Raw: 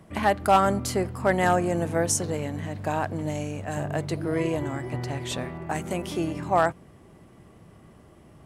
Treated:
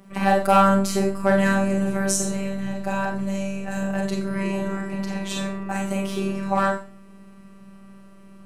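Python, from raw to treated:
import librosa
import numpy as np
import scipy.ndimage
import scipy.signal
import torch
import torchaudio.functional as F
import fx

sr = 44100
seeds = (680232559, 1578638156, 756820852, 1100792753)

y = fx.robotise(x, sr, hz=195.0)
y = fx.rev_schroeder(y, sr, rt60_s=0.39, comb_ms=30, drr_db=0.0)
y = y * librosa.db_to_amplitude(2.0)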